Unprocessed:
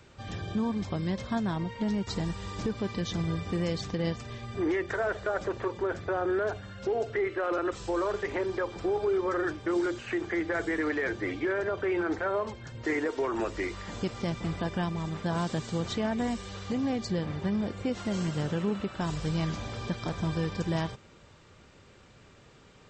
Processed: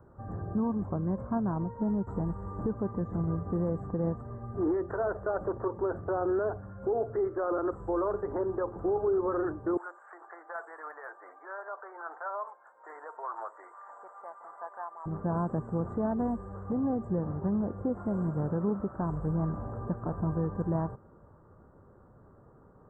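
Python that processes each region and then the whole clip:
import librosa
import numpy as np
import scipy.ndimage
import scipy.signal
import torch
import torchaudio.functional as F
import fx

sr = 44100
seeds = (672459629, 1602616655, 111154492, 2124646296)

y = fx.chain(x, sr, fx.highpass(hz=760.0, slope=24),
    fx.clip_hard(threshold_db=-22.5),
    fx.high_shelf(hz=3600.0, db=5.5), at=(9.77, 15.06))
y = scipy.signal.sosfilt(scipy.signal.cheby2(4, 50, [2400.0, 6100.0], 'bandstop', fs=sr, output='sos'), y)
y = fx.high_shelf(y, sr, hz=5800.0, db=-11.5)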